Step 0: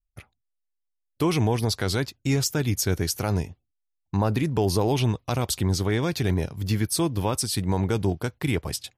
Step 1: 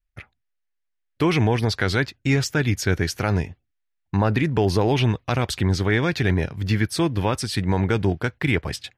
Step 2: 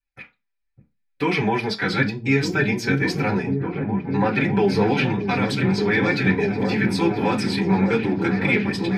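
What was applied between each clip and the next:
drawn EQ curve 1,100 Hz 0 dB, 1,700 Hz +8 dB, 12,000 Hz −13 dB; level +3 dB
flanger 0.98 Hz, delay 3.3 ms, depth 1.9 ms, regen +23%; echo whose low-pass opens from repeat to repeat 603 ms, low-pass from 200 Hz, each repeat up 1 octave, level 0 dB; convolution reverb RT60 0.25 s, pre-delay 3 ms, DRR −6.5 dB; level −6 dB

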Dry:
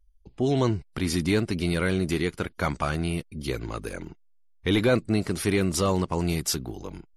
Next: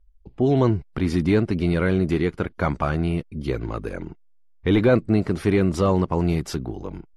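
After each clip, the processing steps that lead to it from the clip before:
low-pass filter 3,500 Hz 6 dB per octave
high-shelf EQ 2,400 Hz −9.5 dB
level +5 dB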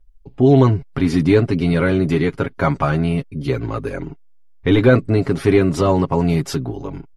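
comb filter 7.3 ms, depth 70%
level +3.5 dB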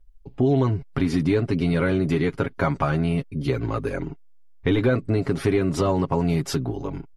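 downward compressor 3 to 1, threshold −17 dBFS, peak gain reduction 8 dB
level −1.5 dB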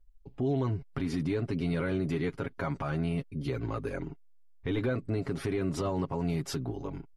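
brickwall limiter −14.5 dBFS, peak gain reduction 7 dB
level −7.5 dB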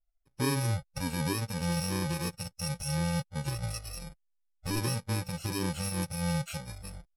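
samples in bit-reversed order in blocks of 64 samples
noise reduction from a noise print of the clip's start 23 dB
low-pass filter 9,100 Hz 12 dB per octave
level +3 dB

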